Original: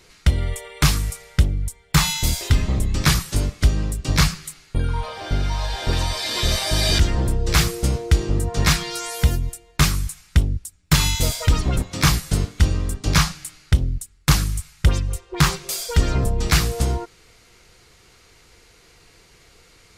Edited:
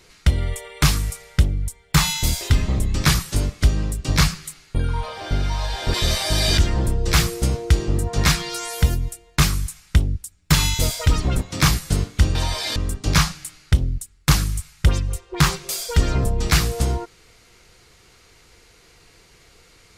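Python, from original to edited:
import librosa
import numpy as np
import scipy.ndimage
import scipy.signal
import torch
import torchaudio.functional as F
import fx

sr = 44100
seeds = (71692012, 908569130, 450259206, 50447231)

y = fx.edit(x, sr, fx.move(start_s=5.94, length_s=0.41, to_s=12.76), tone=tone)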